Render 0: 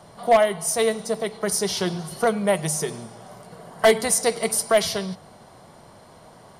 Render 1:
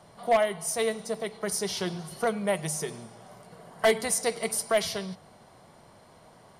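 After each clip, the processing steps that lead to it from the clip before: peaking EQ 2.3 kHz +2.5 dB; trim -6.5 dB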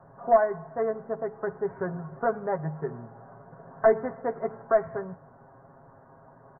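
steep low-pass 1.7 kHz 72 dB/octave; comb 7.4 ms, depth 70%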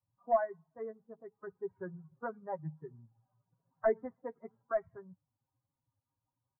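expander on every frequency bin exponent 2; trim -7 dB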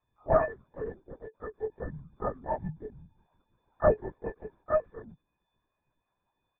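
partials quantised in pitch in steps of 6 st; LPC vocoder at 8 kHz whisper; trim +5.5 dB

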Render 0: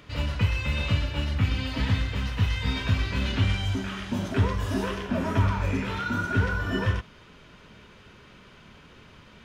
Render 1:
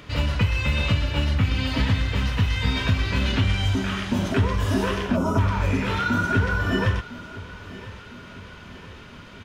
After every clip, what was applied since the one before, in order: spectral selection erased 5.16–5.38 s, 1.5–5 kHz; compression 2.5:1, threshold -25 dBFS, peak gain reduction 6 dB; feedback delay 1004 ms, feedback 53%, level -18 dB; trim +6.5 dB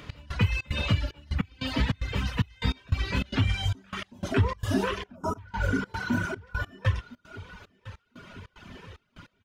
spectral replace 5.47–6.38 s, 1–3.9 kHz after; reverb removal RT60 1.5 s; trance gate "x..xxx.xxxx.." 149 bpm -24 dB; trim -1.5 dB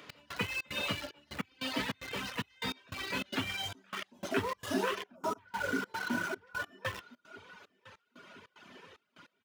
in parallel at -11 dB: bit crusher 5-bit; on the sum: high-pass 290 Hz 12 dB/octave; trim -5 dB

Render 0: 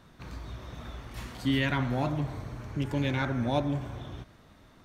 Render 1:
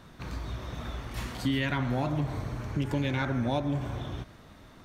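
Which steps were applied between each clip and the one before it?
compression 4:1, threshold -30 dBFS, peak gain reduction 7.5 dB; trim +4.5 dB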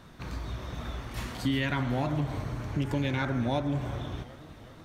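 modulated delay 372 ms, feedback 61%, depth 87 cents, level -18 dB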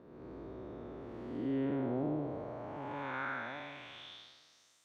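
spectral blur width 283 ms; band-pass sweep 390 Hz -> 7.8 kHz, 2.16–4.84 s; trim +5 dB

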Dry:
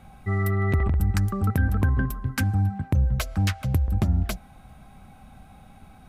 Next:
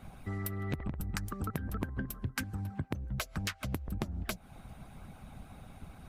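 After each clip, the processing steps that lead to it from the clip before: harmonic-percussive split harmonic -16 dB; compression 5:1, threshold -38 dBFS, peak gain reduction 14.5 dB; trim +4.5 dB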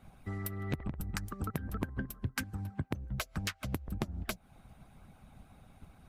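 upward expansion 1.5:1, over -47 dBFS; trim +1 dB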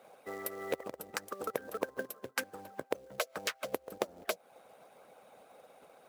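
resonant high-pass 500 Hz, resonance Q 4.9; short-mantissa float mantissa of 2-bit; trim +1.5 dB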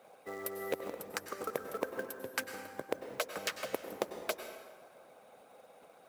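plate-style reverb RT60 1.6 s, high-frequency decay 0.65×, pre-delay 85 ms, DRR 7.5 dB; trim -1 dB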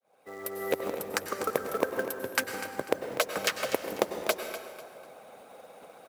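fade-in on the opening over 0.84 s; feedback delay 247 ms, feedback 32%, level -12.5 dB; trim +8 dB

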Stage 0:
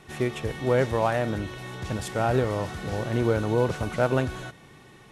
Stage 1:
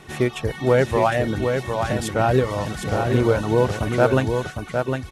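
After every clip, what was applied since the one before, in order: reverb removal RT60 0.67 s; on a send: delay 757 ms -5.5 dB; on the sum: trim +6 dB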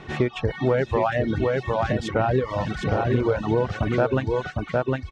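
reverb removal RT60 0.71 s; compression 3:1, threshold -23 dBFS, peak gain reduction 9 dB; distance through air 160 m; trim +4 dB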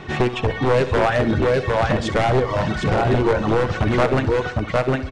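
one-sided wavefolder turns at -17.5 dBFS; feedback delay 65 ms, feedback 58%, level -13 dB; resampled via 22.05 kHz; trim +5.5 dB

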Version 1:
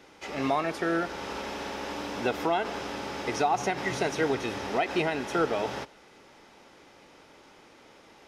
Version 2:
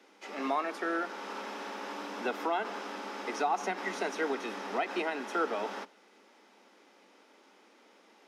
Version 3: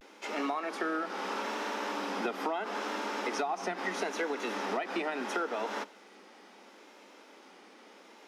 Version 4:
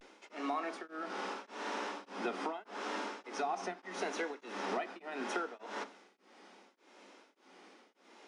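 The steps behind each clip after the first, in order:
Chebyshev high-pass 190 Hz, order 10; dynamic bell 1.2 kHz, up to +5 dB, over -43 dBFS, Q 1.2; trim -6 dB
compression 6:1, threshold -36 dBFS, peak gain reduction 10.5 dB; vibrato 0.75 Hz 81 cents; trim +6 dB
on a send at -11 dB: reverberation RT60 0.30 s, pre-delay 3 ms; on the sum: resampled via 22.05 kHz; tremolo of two beating tones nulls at 1.7 Hz; trim -3 dB

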